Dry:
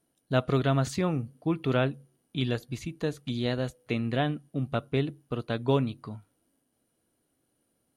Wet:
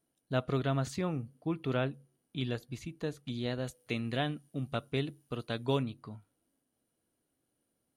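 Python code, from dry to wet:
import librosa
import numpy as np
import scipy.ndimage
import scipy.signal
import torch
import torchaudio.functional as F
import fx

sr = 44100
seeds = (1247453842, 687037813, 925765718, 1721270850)

y = fx.high_shelf(x, sr, hz=3000.0, db=9.5, at=(3.67, 5.83))
y = y * 10.0 ** (-6.0 / 20.0)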